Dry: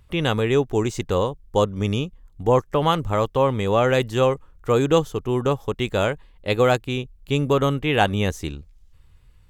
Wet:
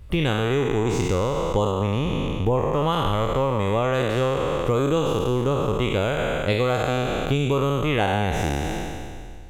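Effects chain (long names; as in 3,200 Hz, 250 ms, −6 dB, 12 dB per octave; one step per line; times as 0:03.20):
peak hold with a decay on every bin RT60 1.91 s
low-shelf EQ 230 Hz +7.5 dB
downward compressor 5 to 1, threshold −21 dBFS, peak gain reduction 11.5 dB
0:01.71–0:02.74: parametric band 6,700 Hz −4.5 dB 1.5 octaves
level +2 dB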